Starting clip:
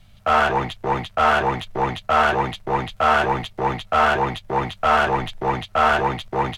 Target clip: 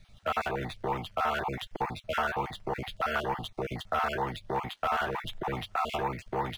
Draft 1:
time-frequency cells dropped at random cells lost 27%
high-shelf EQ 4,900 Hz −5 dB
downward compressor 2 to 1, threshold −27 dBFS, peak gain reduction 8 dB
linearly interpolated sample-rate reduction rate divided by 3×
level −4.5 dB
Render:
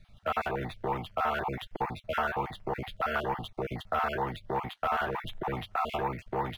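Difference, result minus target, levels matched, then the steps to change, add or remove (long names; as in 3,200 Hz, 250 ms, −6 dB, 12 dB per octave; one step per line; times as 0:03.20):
8,000 Hz band −6.5 dB
change: high-shelf EQ 4,900 Hz +7 dB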